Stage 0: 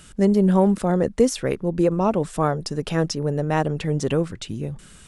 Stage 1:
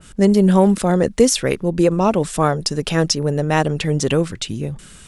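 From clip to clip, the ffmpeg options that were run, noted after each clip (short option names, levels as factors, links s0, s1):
-af "adynamicequalizer=threshold=0.0141:dfrequency=1900:dqfactor=0.7:tfrequency=1900:tqfactor=0.7:attack=5:release=100:ratio=0.375:range=3.5:mode=boostabove:tftype=highshelf,volume=1.58"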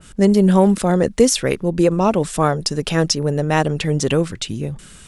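-af anull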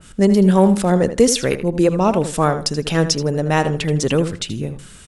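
-filter_complex "[0:a]asplit=2[s0][s1];[s1]adelay=79,lowpass=f=4600:p=1,volume=0.282,asplit=2[s2][s3];[s3]adelay=79,lowpass=f=4600:p=1,volume=0.22,asplit=2[s4][s5];[s5]adelay=79,lowpass=f=4600:p=1,volume=0.22[s6];[s0][s2][s4][s6]amix=inputs=4:normalize=0"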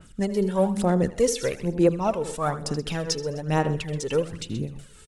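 -af "aecho=1:1:128|256|384:0.168|0.0604|0.0218,aphaser=in_gain=1:out_gain=1:delay=2.3:decay=0.54:speed=1.1:type=sinusoidal,tremolo=f=4.8:d=0.43,volume=0.355"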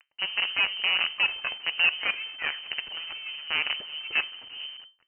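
-af "acrusher=bits=4:dc=4:mix=0:aa=0.000001,flanger=delay=6.3:depth=5.4:regen=-85:speed=1.2:shape=triangular,lowpass=f=2600:t=q:w=0.5098,lowpass=f=2600:t=q:w=0.6013,lowpass=f=2600:t=q:w=0.9,lowpass=f=2600:t=q:w=2.563,afreqshift=-3100"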